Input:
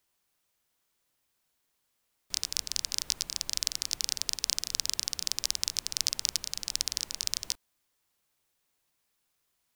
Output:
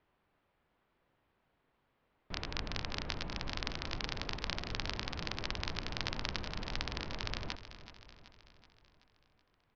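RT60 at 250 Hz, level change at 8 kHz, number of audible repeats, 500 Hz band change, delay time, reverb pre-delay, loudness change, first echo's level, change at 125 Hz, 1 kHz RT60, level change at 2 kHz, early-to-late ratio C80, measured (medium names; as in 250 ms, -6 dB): no reverb, -23.5 dB, 5, +10.5 dB, 378 ms, no reverb, -9.0 dB, -13.5 dB, +12.5 dB, no reverb, +3.5 dB, no reverb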